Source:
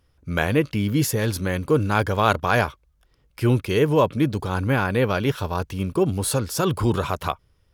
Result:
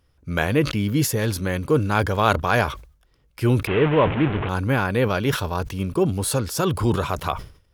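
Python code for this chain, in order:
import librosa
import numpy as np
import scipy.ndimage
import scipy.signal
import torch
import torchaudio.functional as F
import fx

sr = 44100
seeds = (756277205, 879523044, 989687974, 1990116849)

y = fx.delta_mod(x, sr, bps=16000, step_db=-19.5, at=(3.67, 4.49))
y = fx.sustainer(y, sr, db_per_s=120.0)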